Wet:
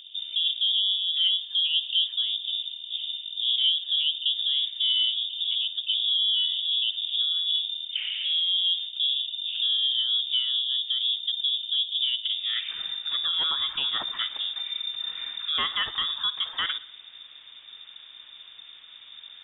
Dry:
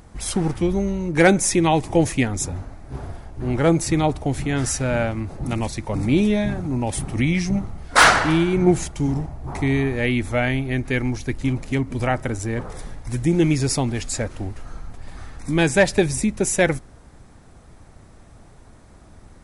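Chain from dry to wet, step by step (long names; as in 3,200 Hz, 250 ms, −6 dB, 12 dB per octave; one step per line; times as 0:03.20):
in parallel at −1.5 dB: downward compressor, threshold −28 dBFS, peak gain reduction 17.5 dB
on the sum: brickwall limiter −12.5 dBFS, peak gain reduction 9 dB
low-pass filter sweep 550 Hz → 2,600 Hz, 0:12.21–0:12.74
surface crackle 35 per second −45 dBFS
on a send at −16 dB: convolution reverb, pre-delay 56 ms
on the sum: voice inversion scrambler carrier 3,600 Hz
level −7.5 dB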